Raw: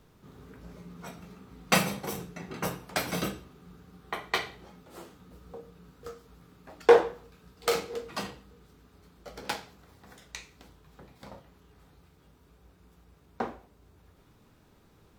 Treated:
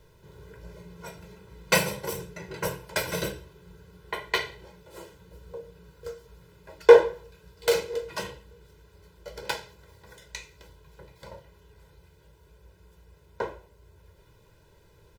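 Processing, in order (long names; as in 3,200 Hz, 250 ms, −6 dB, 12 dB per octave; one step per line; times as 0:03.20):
notch filter 1,200 Hz, Q 5.5
comb filter 2 ms, depth 93%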